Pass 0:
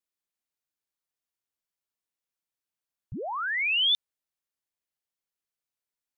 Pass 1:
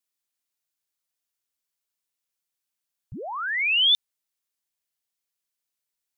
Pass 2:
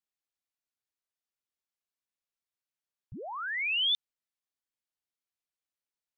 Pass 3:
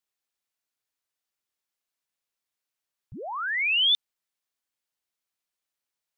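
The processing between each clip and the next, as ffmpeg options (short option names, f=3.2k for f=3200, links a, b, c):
-af "highshelf=f=2.3k:g=8,volume=-1dB"
-af "lowpass=f=3.8k:p=1,volume=-6dB"
-af "lowshelf=f=370:g=-5,volume=6dB"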